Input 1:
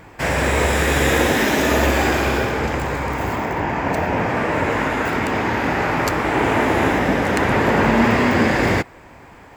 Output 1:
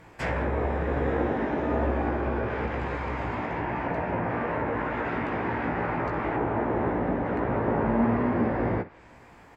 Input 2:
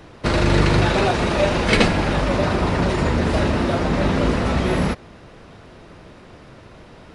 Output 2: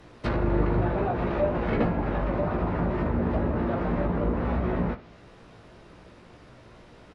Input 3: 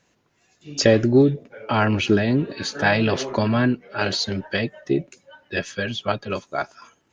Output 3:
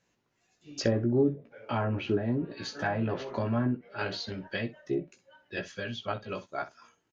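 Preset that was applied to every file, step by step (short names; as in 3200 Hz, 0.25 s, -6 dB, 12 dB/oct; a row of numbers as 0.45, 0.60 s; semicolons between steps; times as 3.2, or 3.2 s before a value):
treble ducked by the level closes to 1100 Hz, closed at -14.5 dBFS; early reflections 17 ms -5.5 dB, 64 ms -15 dB; normalise peaks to -12 dBFS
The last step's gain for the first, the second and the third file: -9.0, -8.0, -10.5 dB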